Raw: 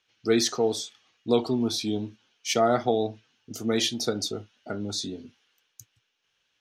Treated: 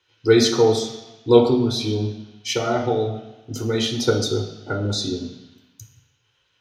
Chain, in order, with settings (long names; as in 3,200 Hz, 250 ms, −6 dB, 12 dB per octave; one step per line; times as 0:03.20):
0:01.54–0:03.90: downward compressor 2.5 to 1, threshold −28 dBFS, peak gain reduction 7.5 dB
convolution reverb RT60 1.1 s, pre-delay 3 ms, DRR 1 dB
level −1 dB